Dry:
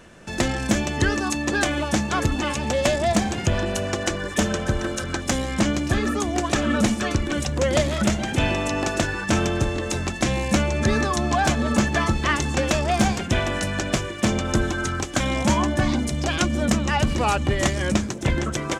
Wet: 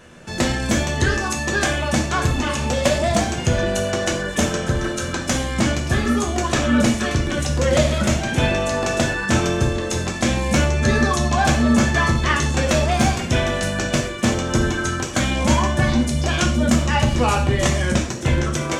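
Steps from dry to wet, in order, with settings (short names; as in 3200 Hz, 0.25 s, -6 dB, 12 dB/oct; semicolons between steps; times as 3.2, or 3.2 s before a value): non-linear reverb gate 0.16 s falling, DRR 0 dB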